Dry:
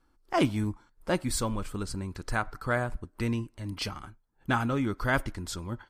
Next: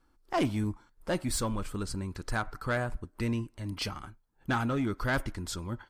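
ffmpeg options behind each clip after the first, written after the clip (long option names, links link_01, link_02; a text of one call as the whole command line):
ffmpeg -i in.wav -af "asoftclip=type=tanh:threshold=-21.5dB" out.wav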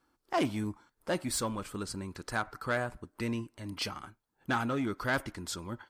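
ffmpeg -i in.wav -af "highpass=frequency=200:poles=1" out.wav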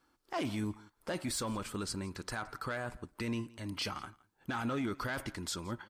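ffmpeg -i in.wav -af "equalizer=frequency=3700:width_type=o:width=2.6:gain=3,alimiter=level_in=3.5dB:limit=-24dB:level=0:latency=1:release=22,volume=-3.5dB,aecho=1:1:169:0.075" out.wav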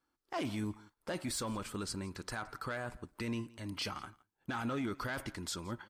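ffmpeg -i in.wav -af "agate=range=-9dB:threshold=-60dB:ratio=16:detection=peak,volume=-1.5dB" out.wav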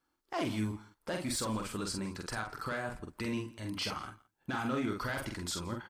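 ffmpeg -i in.wav -filter_complex "[0:a]asplit=2[link_01][link_02];[link_02]adelay=46,volume=-4dB[link_03];[link_01][link_03]amix=inputs=2:normalize=0,volume=1.5dB" out.wav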